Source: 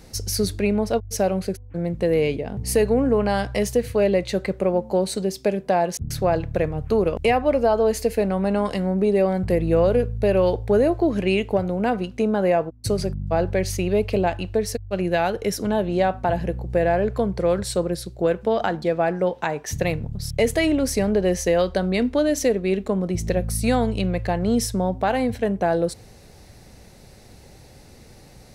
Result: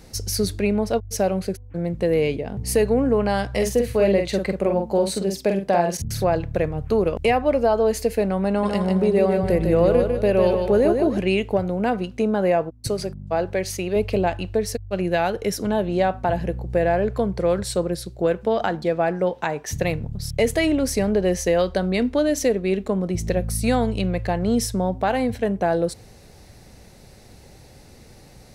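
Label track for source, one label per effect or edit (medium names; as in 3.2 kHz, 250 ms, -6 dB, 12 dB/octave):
3.490000	6.240000	doubling 46 ms -5 dB
8.480000	11.180000	feedback delay 151 ms, feedback 36%, level -5 dB
12.870000	13.960000	bass shelf 170 Hz -10.5 dB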